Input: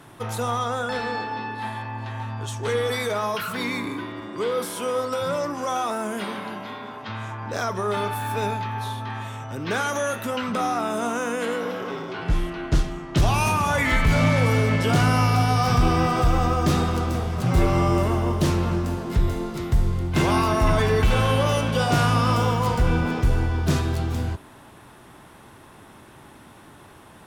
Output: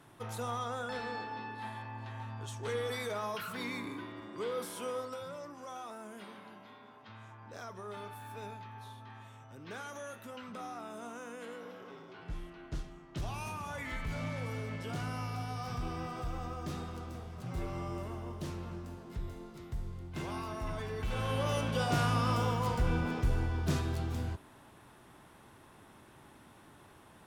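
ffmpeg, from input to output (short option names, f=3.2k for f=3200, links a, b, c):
-af "volume=-2.5dB,afade=t=out:st=4.86:d=0.44:silence=0.421697,afade=t=in:st=20.97:d=0.64:silence=0.354813"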